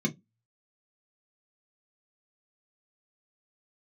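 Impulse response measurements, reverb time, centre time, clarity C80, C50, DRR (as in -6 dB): 0.15 s, 16 ms, 33.0 dB, 22.5 dB, 0.0 dB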